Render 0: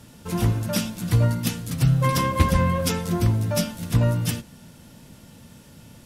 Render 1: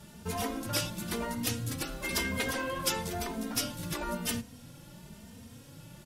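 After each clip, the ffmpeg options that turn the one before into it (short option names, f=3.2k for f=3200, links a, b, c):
-filter_complex "[0:a]afftfilt=real='re*lt(hypot(re,im),0.316)':imag='im*lt(hypot(re,im),0.316)':win_size=1024:overlap=0.75,asplit=2[a][b];[b]adelay=3,afreqshift=1[c];[a][c]amix=inputs=2:normalize=1"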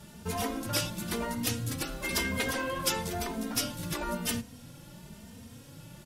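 -af "acontrast=73,volume=-5.5dB"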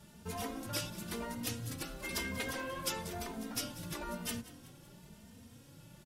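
-filter_complex "[0:a]asplit=5[a][b][c][d][e];[b]adelay=187,afreqshift=55,volume=-17.5dB[f];[c]adelay=374,afreqshift=110,volume=-23.2dB[g];[d]adelay=561,afreqshift=165,volume=-28.9dB[h];[e]adelay=748,afreqshift=220,volume=-34.5dB[i];[a][f][g][h][i]amix=inputs=5:normalize=0,volume=-7.5dB"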